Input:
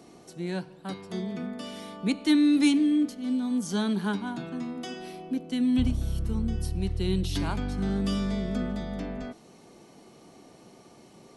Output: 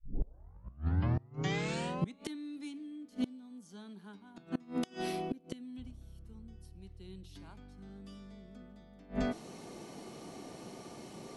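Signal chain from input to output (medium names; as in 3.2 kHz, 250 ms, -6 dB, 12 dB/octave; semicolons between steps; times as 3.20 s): tape start-up on the opening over 2.27 s; inverted gate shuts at -26 dBFS, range -27 dB; trim +4.5 dB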